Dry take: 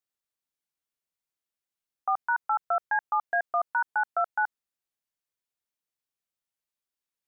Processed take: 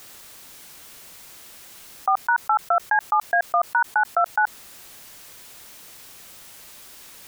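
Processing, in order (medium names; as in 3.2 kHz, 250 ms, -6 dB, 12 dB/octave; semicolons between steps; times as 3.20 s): level flattener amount 70%; trim +6 dB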